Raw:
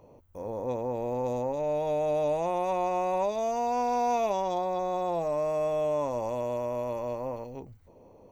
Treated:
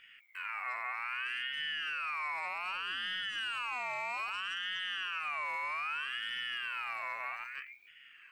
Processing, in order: peak limiter -22.5 dBFS, peak gain reduction 5 dB; compression 2.5:1, threshold -34 dBFS, peak gain reduction 5.5 dB; ring modulator with a swept carrier 2 kHz, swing 20%, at 0.63 Hz

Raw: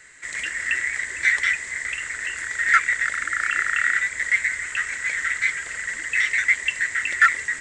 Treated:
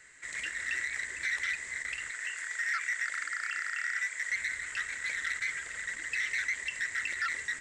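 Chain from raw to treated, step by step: 2.11–4.31 s: high-pass 850 Hz 6 dB/octave; peak limiter -14.5 dBFS, peak gain reduction 10.5 dB; transformer saturation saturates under 1.8 kHz; trim -7.5 dB

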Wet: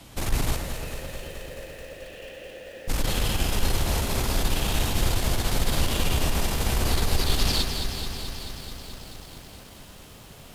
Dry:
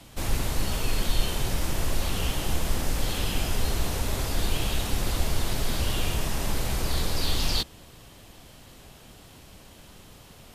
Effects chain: 0.56–2.88 s: vowel filter e; valve stage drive 19 dB, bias 0.5; echo whose repeats swap between lows and highs 102 ms, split 2.4 kHz, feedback 75%, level -8 dB; bit-crushed delay 217 ms, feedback 80%, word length 9-bit, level -9 dB; trim +4 dB

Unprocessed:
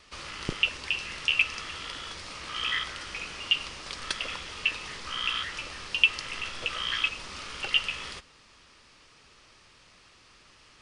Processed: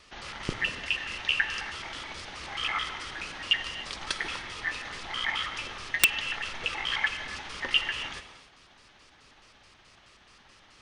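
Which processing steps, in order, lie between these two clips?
pitch shift switched off and on -7 st, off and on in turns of 107 ms; gated-style reverb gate 320 ms flat, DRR 8.5 dB; integer overflow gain 6.5 dB

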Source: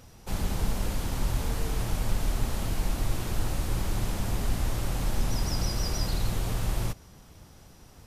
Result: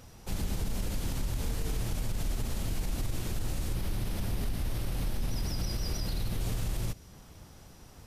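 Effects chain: dynamic bell 1 kHz, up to -6 dB, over -54 dBFS, Q 0.8; peak limiter -23.5 dBFS, peak gain reduction 9.5 dB; 3.74–6.41 s: peaking EQ 7.2 kHz -7.5 dB 0.45 oct

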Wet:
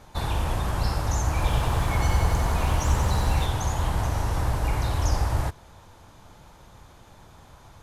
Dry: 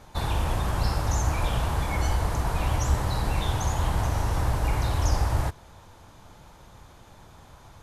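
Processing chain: 1.26–3.46 s: bit-crushed delay 92 ms, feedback 80%, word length 9-bit, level -6 dB

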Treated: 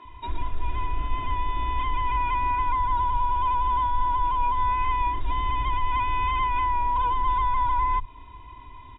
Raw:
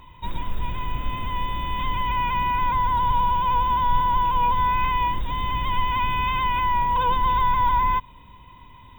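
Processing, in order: comb 2.9 ms, depth 84%; compression 2.5:1, threshold -22 dBFS, peak gain reduction 9 dB; distance through air 230 m; bands offset in time highs, lows 50 ms, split 180 Hz

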